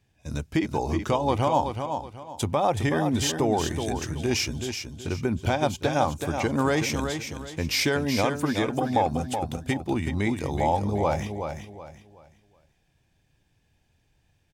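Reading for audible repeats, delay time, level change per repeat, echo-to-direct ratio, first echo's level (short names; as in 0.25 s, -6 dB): 3, 0.375 s, -10.5 dB, -6.5 dB, -7.0 dB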